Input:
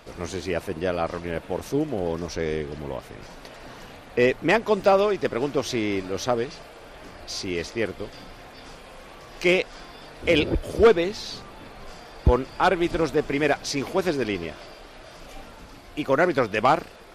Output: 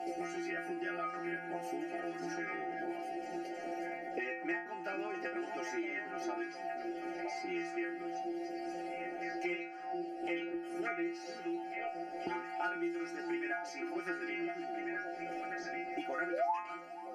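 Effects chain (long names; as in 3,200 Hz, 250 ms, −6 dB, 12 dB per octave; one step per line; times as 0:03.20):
drawn EQ curve 450 Hz 0 dB, 900 Hz −16 dB, 3,000 Hz +2 dB
steady tone 760 Hz −38 dBFS
in parallel at −2.5 dB: downward compressor, threshold −25 dBFS, peak gain reduction 13.5 dB
on the sum: sound drawn into the spectrogram rise, 0:16.29–0:16.59, 450–1,200 Hz −8 dBFS
phaser with its sweep stopped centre 730 Hz, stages 8
stiff-string resonator 170 Hz, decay 0.44 s, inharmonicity 0.002
envelope filter 410–1,200 Hz, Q 2.7, up, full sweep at −40.5 dBFS
echo through a band-pass that steps 482 ms, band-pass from 250 Hz, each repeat 1.4 octaves, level −4 dB
multiband upward and downward compressor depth 100%
level +15.5 dB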